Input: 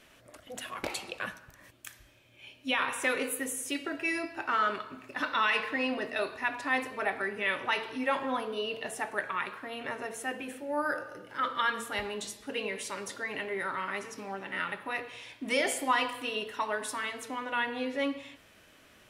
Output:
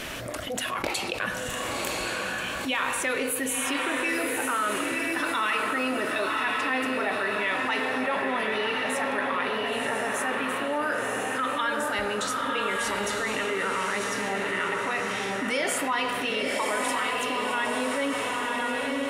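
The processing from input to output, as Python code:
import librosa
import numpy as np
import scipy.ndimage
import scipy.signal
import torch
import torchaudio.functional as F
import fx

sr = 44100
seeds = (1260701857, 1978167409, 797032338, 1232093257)

p1 = x + fx.echo_diffused(x, sr, ms=1037, feedback_pct=46, wet_db=-3.0, dry=0)
p2 = fx.env_flatten(p1, sr, amount_pct=70)
y = p2 * 10.0 ** (-2.0 / 20.0)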